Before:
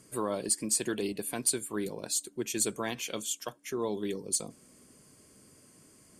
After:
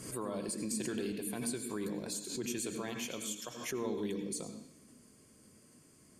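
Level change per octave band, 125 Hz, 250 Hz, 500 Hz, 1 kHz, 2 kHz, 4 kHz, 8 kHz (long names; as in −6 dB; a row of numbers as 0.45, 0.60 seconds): −1.5, −1.5, −4.5, −6.5, −4.5, −6.0, −9.0 decibels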